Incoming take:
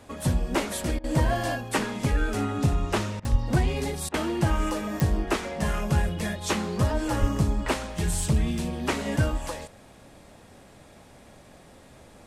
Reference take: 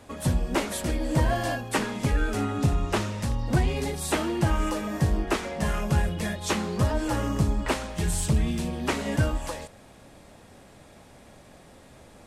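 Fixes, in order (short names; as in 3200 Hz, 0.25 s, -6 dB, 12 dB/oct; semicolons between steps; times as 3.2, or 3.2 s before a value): de-click; 3.31–3.43 HPF 140 Hz 24 dB/oct; 7.2–7.32 HPF 140 Hz 24 dB/oct; interpolate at 0.99/3.2/4.09, 48 ms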